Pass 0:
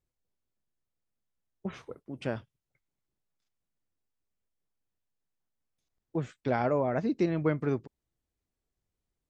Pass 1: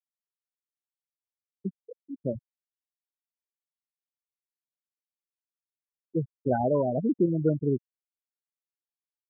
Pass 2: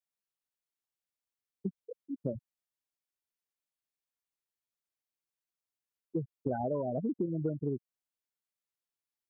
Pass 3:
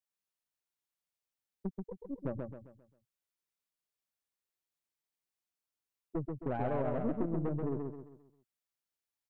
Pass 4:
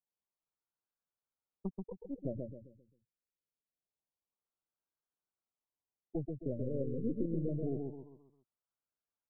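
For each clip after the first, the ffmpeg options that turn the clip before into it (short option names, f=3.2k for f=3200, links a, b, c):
-af "adynamicequalizer=threshold=0.00708:dfrequency=1400:dqfactor=0.77:tfrequency=1400:tqfactor=0.77:attack=5:release=100:ratio=0.375:range=3:mode=cutabove:tftype=bell,afftfilt=real='re*gte(hypot(re,im),0.1)':imag='im*gte(hypot(re,im),0.1)':win_size=1024:overlap=0.75,volume=4dB"
-af "acompressor=threshold=-30dB:ratio=6"
-filter_complex "[0:a]aeval=exprs='(tanh(35.5*val(0)+0.65)-tanh(0.65))/35.5':c=same,asplit=2[a][b];[b]aecho=0:1:133|266|399|532|665:0.631|0.246|0.096|0.0374|0.0146[c];[a][c]amix=inputs=2:normalize=0,volume=1.5dB"
-af "afftfilt=real='re*lt(b*sr/1024,550*pow(1700/550,0.5+0.5*sin(2*PI*0.25*pts/sr)))':imag='im*lt(b*sr/1024,550*pow(1700/550,0.5+0.5*sin(2*PI*0.25*pts/sr)))':win_size=1024:overlap=0.75,volume=-1dB"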